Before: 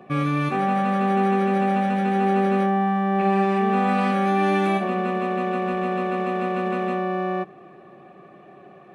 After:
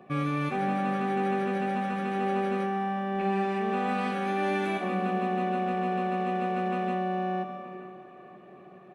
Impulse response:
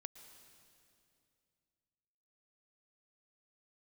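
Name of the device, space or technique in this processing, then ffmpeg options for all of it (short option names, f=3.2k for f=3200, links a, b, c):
stairwell: -filter_complex "[1:a]atrim=start_sample=2205[a];[0:a][a]afir=irnorm=-1:irlink=0,asplit=2[b][c];[c]adelay=926,lowpass=f=2k:p=1,volume=-18dB,asplit=2[d][e];[e]adelay=926,lowpass=f=2k:p=1,volume=0.42,asplit=2[f][g];[g]adelay=926,lowpass=f=2k:p=1,volume=0.42[h];[b][d][f][h]amix=inputs=4:normalize=0"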